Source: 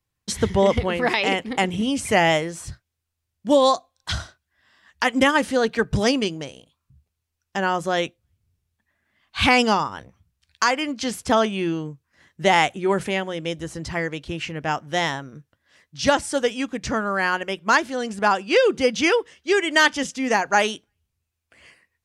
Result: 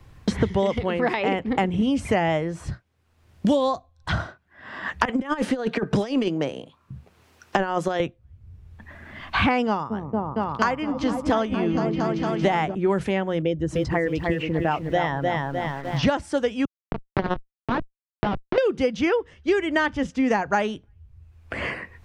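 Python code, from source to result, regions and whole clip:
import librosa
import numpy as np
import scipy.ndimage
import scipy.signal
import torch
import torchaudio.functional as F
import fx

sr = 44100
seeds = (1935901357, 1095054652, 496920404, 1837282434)

y = fx.chain(x, sr, fx.highpass(hz=240.0, slope=12),
    fx.over_compress(threshold_db=-25.0, ratio=-0.5), at=(5.05, 8.0))
y = fx.chain(y, sr, fx.echo_opening(ms=230, hz=400, octaves=1, feedback_pct=70, wet_db=-3),
    fx.upward_expand(threshold_db=-28.0, expansion=1.5), at=(9.67, 12.75))
y = fx.chain(y, sr, fx.envelope_sharpen(power=1.5),
    fx.echo_crushed(ms=303, feedback_pct=35, bits=8, wet_db=-4.5), at=(13.42, 16.03))
y = fx.chain(y, sr, fx.schmitt(flips_db=-16.5),
    fx.gaussian_blur(sigma=2.4),
    fx.over_compress(threshold_db=-28.0, ratio=-0.5), at=(16.65, 18.58))
y = fx.lowpass(y, sr, hz=1400.0, slope=6)
y = fx.low_shelf(y, sr, hz=81.0, db=6.5)
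y = fx.band_squash(y, sr, depth_pct=100)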